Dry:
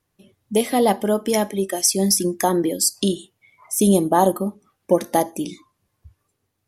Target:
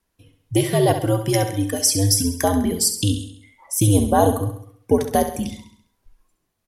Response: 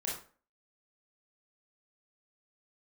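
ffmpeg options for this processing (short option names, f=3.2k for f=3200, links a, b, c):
-af "aecho=1:1:67|134|201|268|335|402:0.355|0.177|0.0887|0.0444|0.0222|0.0111,afreqshift=-94"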